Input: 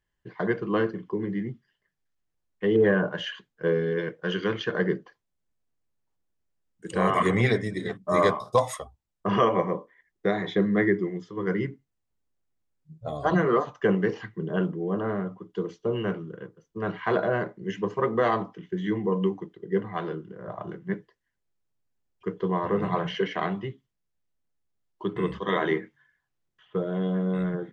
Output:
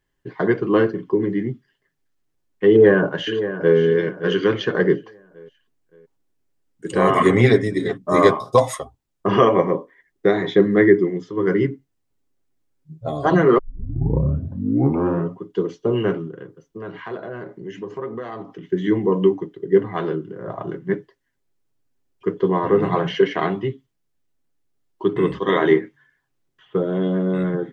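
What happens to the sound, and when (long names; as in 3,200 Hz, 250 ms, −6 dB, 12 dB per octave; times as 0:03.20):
0:02.70–0:03.77: delay throw 570 ms, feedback 40%, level −11.5 dB
0:13.58: tape start 1.82 s
0:16.27–0:18.65: downward compressor 3 to 1, threshold −40 dBFS
whole clip: parametric band 320 Hz +7 dB 0.84 octaves; comb filter 7.4 ms, depth 37%; level +5 dB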